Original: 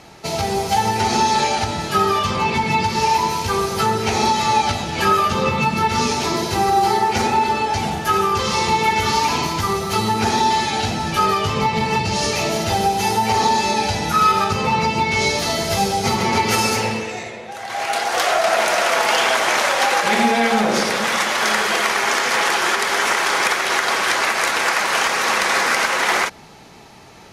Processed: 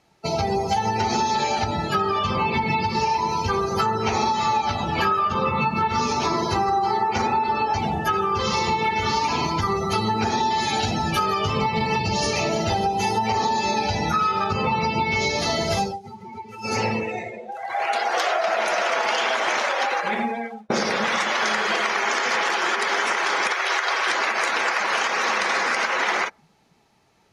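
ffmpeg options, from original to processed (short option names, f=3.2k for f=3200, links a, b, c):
-filter_complex "[0:a]asettb=1/sr,asplit=3[a][b][c];[a]atrim=end=3.774[d];[b]atrim=start=3.77:end=7.79,asetpts=PTS-STARTPTS,afade=t=in:d=0.004:c=qsin,afade=t=out:st=4.016:d=0.004:c=qsin,equalizer=f=1.1k:w=2.8:g=6.5[e];[c]atrim=start=7.786[f];[d][e]acrossfade=d=0.004:c1=hsin:c2=qsin[g];[g][f]acrossfade=d=0.004:c1=qsin:c2=hsin,asettb=1/sr,asplit=3[h][i][j];[h]atrim=end=10.584[k];[i]atrim=start=10.58:end=12.08,asetpts=PTS-STARTPTS,afade=t=in:d=0.004:c=qsin,afade=t=out:st=1.496:d=0.004:c=qsin,highshelf=f=7.8k:g=8.5[l];[j]atrim=start=12.076[m];[k][l]acrossfade=d=0.004:c1=hsin:c2=qsin[n];[n][m]acrossfade=d=0.004:c1=qsin:c2=hsin,asettb=1/sr,asplit=3[o][p][q];[o]atrim=end=23.524[r];[p]atrim=start=23.52:end=24.07,asetpts=PTS-STARTPTS,afade=t=in:d=0.004:c=qsin,afade=t=out:st=0.546:d=0.004:c=qsin,highpass=f=490:p=1[s];[q]atrim=start=24.066[t];[r][s]acrossfade=d=0.004:c1=hsin:c2=qsin[u];[u][t]acrossfade=d=0.004:c1=qsin:c2=hsin,asplit=4[v][w][x][y];[v]atrim=end=15.99,asetpts=PTS-STARTPTS,afade=t=out:st=15.78:d=0.21:silence=0.141254[z];[w]atrim=start=15.99:end=16.61,asetpts=PTS-STARTPTS,volume=-17dB[aa];[x]atrim=start=16.61:end=20.7,asetpts=PTS-STARTPTS,afade=t=in:d=0.21:silence=0.141254,afade=t=out:st=2.91:d=1.18[ab];[y]atrim=start=20.7,asetpts=PTS-STARTPTS,afade=t=in:d=0.004:c=hsin[ac];[z][aa][ab][ac]concat=n=4:v=0:a=1,afftdn=nr=20:nf=-28,acompressor=threshold=-20dB:ratio=6,volume=1dB"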